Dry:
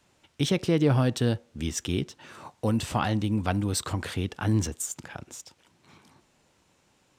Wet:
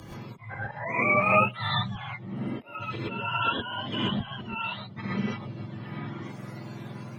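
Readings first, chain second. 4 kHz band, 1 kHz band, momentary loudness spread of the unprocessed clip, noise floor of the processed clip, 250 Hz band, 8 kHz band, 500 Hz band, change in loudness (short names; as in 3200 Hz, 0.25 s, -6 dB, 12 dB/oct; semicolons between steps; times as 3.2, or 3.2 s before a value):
+2.5 dB, +6.5 dB, 17 LU, -44 dBFS, -5.0 dB, under -25 dB, -2.0 dB, -1.0 dB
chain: spectrum mirrored in octaves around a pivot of 540 Hz; notches 50/100/150/200/250 Hz; upward compressor, threshold -30 dBFS; auto swell 0.552 s; frequency shift +21 Hz; non-linear reverb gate 0.15 s rising, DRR -7 dB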